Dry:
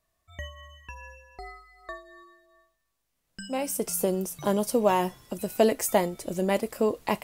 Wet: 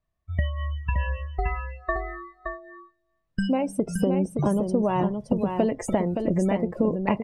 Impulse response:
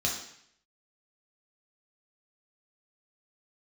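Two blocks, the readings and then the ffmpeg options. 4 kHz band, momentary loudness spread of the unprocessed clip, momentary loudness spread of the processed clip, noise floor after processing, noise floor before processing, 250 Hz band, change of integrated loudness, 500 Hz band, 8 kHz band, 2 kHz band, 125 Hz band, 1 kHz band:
−5.0 dB, 21 LU, 11 LU, −75 dBFS, −78 dBFS, +6.5 dB, +0.5 dB, 0.0 dB, −10.0 dB, +2.5 dB, +10.5 dB, +0.5 dB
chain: -filter_complex "[0:a]aemphasis=mode=reproduction:type=50fm,afftdn=noise_reduction=23:noise_floor=-38,bass=frequency=250:gain=9,treble=frequency=4000:gain=-3,asplit=2[link_01][link_02];[link_02]alimiter=limit=-17.5dB:level=0:latency=1:release=81,volume=0.5dB[link_03];[link_01][link_03]amix=inputs=2:normalize=0,acompressor=threshold=-30dB:ratio=6,asplit=2[link_04][link_05];[link_05]aecho=0:1:570:0.501[link_06];[link_04][link_06]amix=inputs=2:normalize=0,volume=8.5dB"

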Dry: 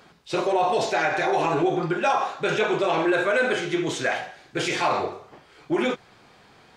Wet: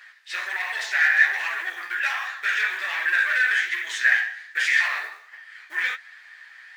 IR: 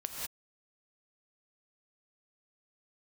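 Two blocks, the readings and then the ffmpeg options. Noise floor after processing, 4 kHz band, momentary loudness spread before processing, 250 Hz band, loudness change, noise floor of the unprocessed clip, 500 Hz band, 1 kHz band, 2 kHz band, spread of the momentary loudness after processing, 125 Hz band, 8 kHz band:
−49 dBFS, +0.5 dB, 7 LU, below −30 dB, +2.0 dB, −54 dBFS, −25.0 dB, −10.0 dB, +8.5 dB, 12 LU, below −40 dB, −1.5 dB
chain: -af "flanger=delay=7.6:depth=9.1:regen=31:speed=1.3:shape=sinusoidal,asoftclip=type=tanh:threshold=-25dB,acrusher=bits=7:mode=log:mix=0:aa=0.000001,highpass=frequency=1800:width_type=q:width=12,volume=3dB"

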